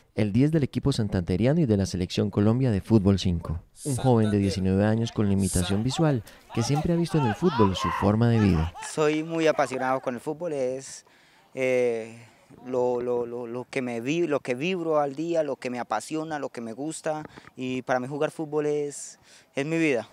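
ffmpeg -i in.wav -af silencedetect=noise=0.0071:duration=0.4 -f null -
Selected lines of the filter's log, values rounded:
silence_start: 11.00
silence_end: 11.55 | silence_duration: 0.55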